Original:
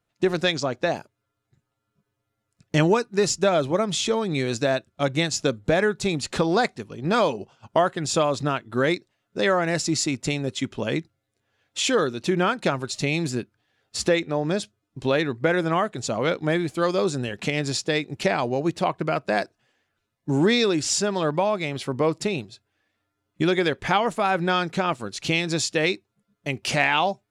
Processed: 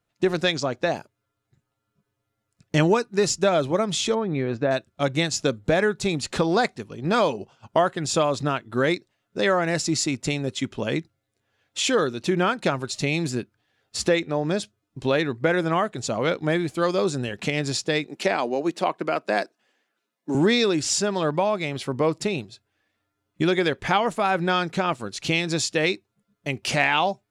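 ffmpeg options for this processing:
-filter_complex "[0:a]asplit=3[a][b][c];[a]afade=t=out:st=4.14:d=0.02[d];[b]lowpass=1.7k,afade=t=in:st=4.14:d=0.02,afade=t=out:st=4.7:d=0.02[e];[c]afade=t=in:st=4.7:d=0.02[f];[d][e][f]amix=inputs=3:normalize=0,asettb=1/sr,asplit=3[g][h][i];[g]atrim=end=18.074[j];[h]atrim=start=18.07:end=20.35,asetpts=PTS-STARTPTS,afade=t=in:d=0.004:c=qsin,afade=t=out:st=2.276:d=0.004:c=qsin,highpass=f=210:w=0.5412,highpass=f=210:w=1.3066[k];[i]atrim=start=20.346[l];[j][k]acrossfade=d=0.004:c1=hsin:c2=qsin[m];[m][l]acrossfade=d=0.004:c1=qsin:c2=hsin"

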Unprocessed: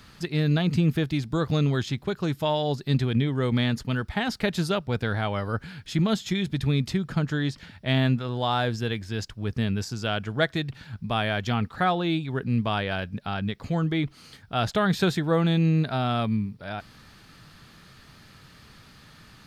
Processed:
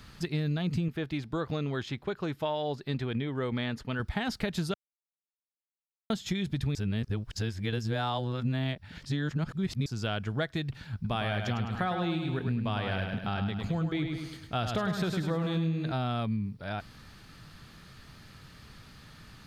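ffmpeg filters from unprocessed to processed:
-filter_complex "[0:a]asettb=1/sr,asplit=3[a][b][c];[a]atrim=end=0.884[d];[b]atrim=start=0.88:end=4,asetpts=PTS-STARTPTS,afade=t=in:d=0.004:c=qsin,afade=t=out:st=3.116:d=0.004:c=qsin,bass=f=250:g=-9,treble=f=4k:g=-9[e];[c]atrim=start=3.996[f];[d][e]acrossfade=d=0.004:c1=hsin:c2=qsin[g];[g][f]acrossfade=d=0.004:c1=qsin:c2=hsin,asettb=1/sr,asplit=3[h][i][j];[h]atrim=end=10.944[k];[i]atrim=start=10.94:end=15.92,asetpts=PTS-STARTPTS,afade=t=in:d=0.004:c=qsin,afade=t=out:st=4.976:d=0.004:c=qsin,aecho=1:1:104|208|312|416|520|624:0.501|0.231|0.106|0.0488|0.0224|0.0103,atrim=end_sample=219618[l];[j]atrim=start=15.916[m];[k][l]acrossfade=d=0.004:c1=hsin:c2=qsin[n];[n][m]acrossfade=d=0.004:c1=qsin:c2=hsin,asplit=5[o][p][q][r][s];[o]atrim=end=4.74,asetpts=PTS-STARTPTS,afade=t=out:st=4.736:d=0.004:c=hsin[t];[p]atrim=start=4.74:end=6.1,asetpts=PTS-STARTPTS,volume=0[u];[q]atrim=start=6.1:end=6.752,asetpts=PTS-STARTPTS,afade=t=in:d=0.004:c=hsin[v];[r]atrim=start=6.748:end=9.862,asetpts=PTS-STARTPTS,areverse[w];[s]atrim=start=9.858[x];[t][u][v]concat=n=3:v=0:a=1[y];[y][w]acrossfade=d=0.004:c1=hsin:c2=hsin[z];[z][x]acrossfade=d=0.004:c1=hsin:c2=hsin,lowshelf=f=110:g=6,acompressor=threshold=-25dB:ratio=6,volume=-2dB"

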